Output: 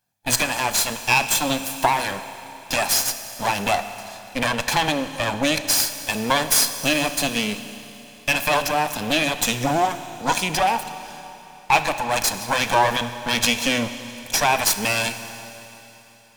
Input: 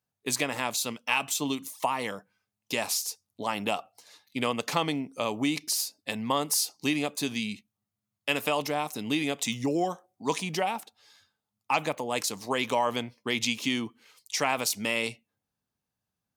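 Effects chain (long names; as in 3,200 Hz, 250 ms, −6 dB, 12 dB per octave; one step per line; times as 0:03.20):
lower of the sound and its delayed copy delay 1.2 ms
low-shelf EQ 120 Hz −8 dB
four-comb reverb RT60 3.4 s, combs from 26 ms, DRR 11 dB
in parallel at −5 dB: hard clipping −27.5 dBFS, distortion −10 dB
on the sum: level +8 dB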